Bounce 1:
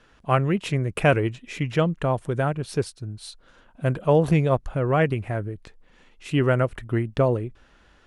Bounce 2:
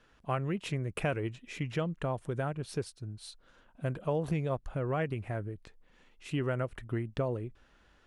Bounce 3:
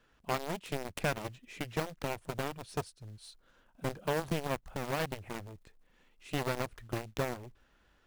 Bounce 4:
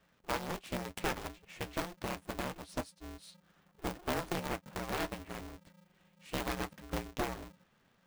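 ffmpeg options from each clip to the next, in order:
-af "acompressor=threshold=0.0794:ratio=2.5,volume=0.422"
-af "acrusher=bits=5:mode=log:mix=0:aa=0.000001,aeval=exprs='0.119*(cos(1*acos(clip(val(0)/0.119,-1,1)))-cos(1*PI/2))+0.0299*(cos(7*acos(clip(val(0)/0.119,-1,1)))-cos(7*PI/2))':c=same,volume=0.841"
-af "flanger=delay=8.6:depth=1.9:regen=44:speed=0.3:shape=triangular,aeval=exprs='val(0)*sgn(sin(2*PI*180*n/s))':c=same,volume=1.19"

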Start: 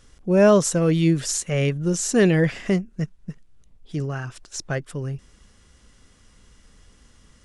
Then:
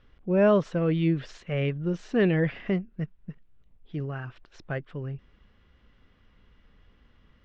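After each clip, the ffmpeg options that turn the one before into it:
-af "lowpass=f=3300:w=0.5412,lowpass=f=3300:w=1.3066,volume=0.531"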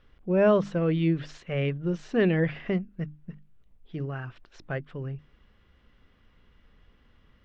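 -af "bandreject=f=50:t=h:w=6,bandreject=f=100:t=h:w=6,bandreject=f=150:t=h:w=6,bandreject=f=200:t=h:w=6,bandreject=f=250:t=h:w=6,bandreject=f=300:t=h:w=6"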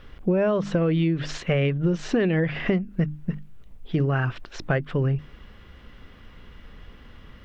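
-filter_complex "[0:a]asplit=2[s0][s1];[s1]alimiter=limit=0.0668:level=0:latency=1:release=189,volume=1.41[s2];[s0][s2]amix=inputs=2:normalize=0,acompressor=threshold=0.0562:ratio=12,volume=2.11"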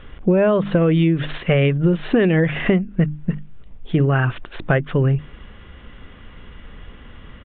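-af "aresample=8000,aresample=44100,volume=2"

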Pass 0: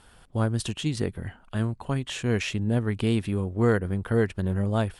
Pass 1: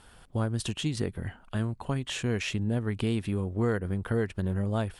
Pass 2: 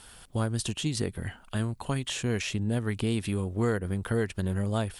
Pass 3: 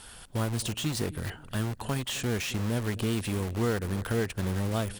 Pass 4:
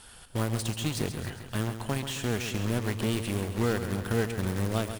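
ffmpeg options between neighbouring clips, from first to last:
-af "acompressor=threshold=0.0447:ratio=2"
-filter_complex "[0:a]acrossover=split=1100[s0][s1];[s1]alimiter=level_in=2.11:limit=0.0631:level=0:latency=1:release=302,volume=0.473[s2];[s0][s2]amix=inputs=2:normalize=0,highshelf=f=2700:g=11.5"
-filter_complex "[0:a]asplit=2[s0][s1];[s1]adelay=262,lowpass=f=1200:p=1,volume=0.106,asplit=2[s2][s3];[s3]adelay=262,lowpass=f=1200:p=1,volume=0.38,asplit=2[s4][s5];[s5]adelay=262,lowpass=f=1200:p=1,volume=0.38[s6];[s0][s2][s4][s6]amix=inputs=4:normalize=0,asplit=2[s7][s8];[s8]aeval=exprs='(mod(35.5*val(0)+1,2)-1)/35.5':c=same,volume=0.562[s9];[s7][s9]amix=inputs=2:normalize=0,volume=0.891"
-filter_complex "[0:a]asplit=2[s0][s1];[s1]acrusher=bits=3:mix=0:aa=0.5,volume=0.531[s2];[s0][s2]amix=inputs=2:normalize=0,aecho=1:1:135|270|405|540|675|810|945:0.335|0.194|0.113|0.0654|0.0379|0.022|0.0128,volume=0.708"

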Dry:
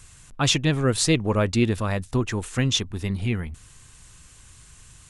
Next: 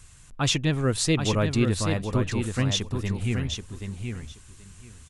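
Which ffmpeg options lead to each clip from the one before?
-filter_complex "[0:a]lowshelf=f=130:g=3.5,asplit=2[s0][s1];[s1]aecho=0:1:779|1558|2337:0.501|0.0802|0.0128[s2];[s0][s2]amix=inputs=2:normalize=0,volume=0.668"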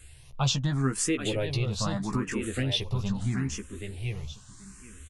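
-filter_complex "[0:a]acompressor=threshold=0.0631:ratio=5,asplit=2[s0][s1];[s1]adelay=15,volume=0.501[s2];[s0][s2]amix=inputs=2:normalize=0,asplit=2[s3][s4];[s4]afreqshift=0.78[s5];[s3][s5]amix=inputs=2:normalize=1,volume=1.26"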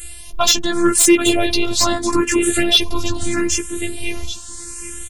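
-af "afftfilt=real='hypot(re,im)*cos(PI*b)':imag='0':win_size=512:overlap=0.75,highshelf=f=6500:g=10.5,aeval=exprs='0.335*sin(PI/2*2*val(0)/0.335)':c=same,volume=2.51"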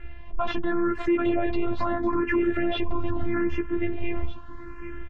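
-af "lowpass=f=1900:w=0.5412,lowpass=f=1900:w=1.3066,bandreject=f=440:w=12,alimiter=limit=0.178:level=0:latency=1:release=92"

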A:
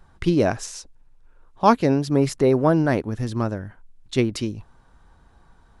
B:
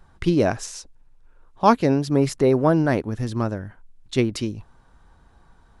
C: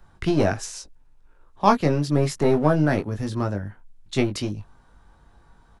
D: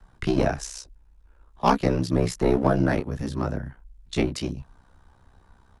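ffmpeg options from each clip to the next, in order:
-af anull
-filter_complex "[0:a]acrossover=split=240|640|4100[s0][s1][s2][s3];[s1]aeval=exprs='clip(val(0),-1,0.0282)':c=same[s4];[s0][s4][s2][s3]amix=inputs=4:normalize=0,asplit=2[s5][s6];[s6]adelay=20,volume=0.531[s7];[s5][s7]amix=inputs=2:normalize=0,volume=0.891"
-filter_complex "[0:a]aeval=exprs='val(0)*sin(2*PI*32*n/s)':c=same,acrossover=split=300|510|3900[s0][s1][s2][s3];[s2]asoftclip=type=hard:threshold=0.2[s4];[s0][s1][s4][s3]amix=inputs=4:normalize=0,volume=1.12"

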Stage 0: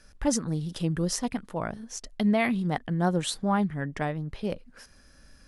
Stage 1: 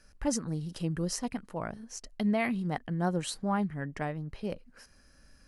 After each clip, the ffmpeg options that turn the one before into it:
-af "bandreject=f=3500:w=8.4,volume=0.596"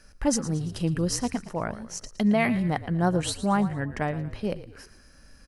-filter_complex "[0:a]asplit=5[s0][s1][s2][s3][s4];[s1]adelay=114,afreqshift=-47,volume=0.188[s5];[s2]adelay=228,afreqshift=-94,volume=0.0881[s6];[s3]adelay=342,afreqshift=-141,volume=0.0417[s7];[s4]adelay=456,afreqshift=-188,volume=0.0195[s8];[s0][s5][s6][s7][s8]amix=inputs=5:normalize=0,volume=2"

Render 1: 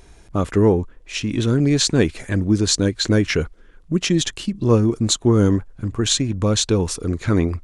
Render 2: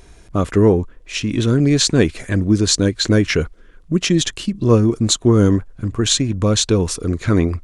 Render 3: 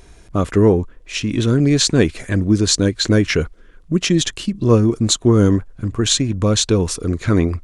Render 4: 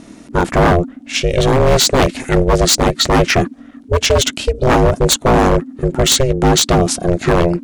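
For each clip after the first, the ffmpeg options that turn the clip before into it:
-af "bandreject=f=850:w=12,volume=1.33"
-af anull
-af "aeval=exprs='val(0)*sin(2*PI*260*n/s)':c=same,aeval=exprs='0.237*(abs(mod(val(0)/0.237+3,4)-2)-1)':c=same,volume=2.66"

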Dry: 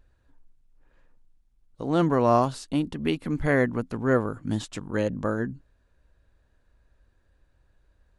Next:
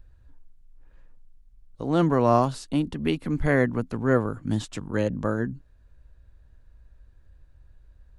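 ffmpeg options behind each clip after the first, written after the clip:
-filter_complex "[0:a]lowshelf=f=130:g=5,acrossover=split=140|4200[s0][s1][s2];[s0]acompressor=mode=upward:threshold=0.00794:ratio=2.5[s3];[s3][s1][s2]amix=inputs=3:normalize=0"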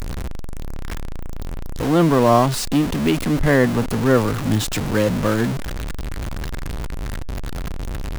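-af "aeval=exprs='val(0)+0.5*0.0631*sgn(val(0))':c=same,volume=1.58"

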